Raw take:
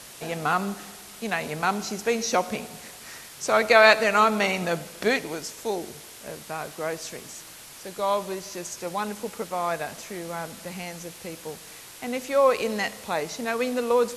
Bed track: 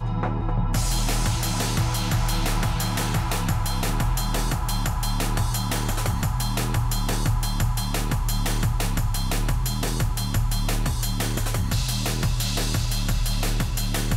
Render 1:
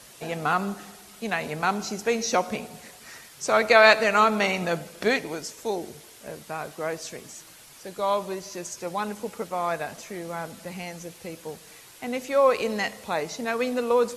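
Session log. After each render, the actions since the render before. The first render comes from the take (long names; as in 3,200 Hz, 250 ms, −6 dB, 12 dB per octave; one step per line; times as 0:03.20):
broadband denoise 6 dB, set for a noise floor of −45 dBFS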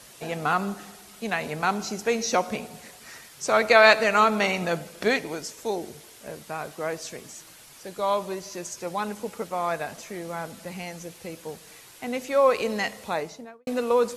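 0:13.07–0:13.67: fade out and dull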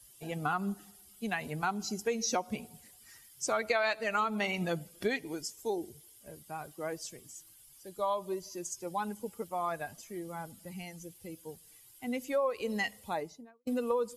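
spectral dynamics exaggerated over time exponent 1.5
downward compressor 5 to 1, threshold −28 dBFS, peak gain reduction 14 dB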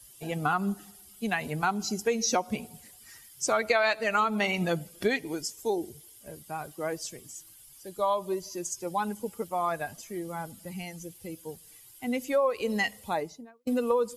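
level +5 dB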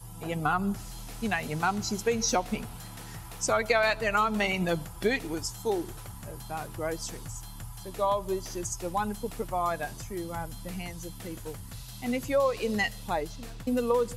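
mix in bed track −19 dB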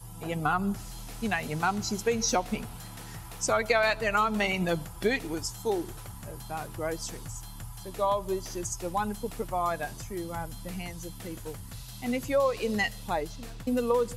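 no processing that can be heard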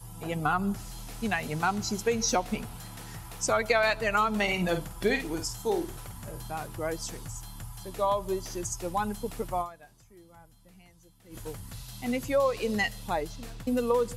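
0:04.43–0:06.50: double-tracking delay 50 ms −8.5 dB
0:09.61–0:11.36: duck −18.5 dB, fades 0.34 s exponential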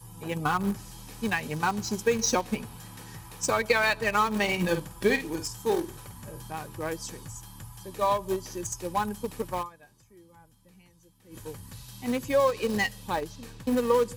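in parallel at −7 dB: centre clipping without the shift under −25 dBFS
on the sum: notch comb filter 690 Hz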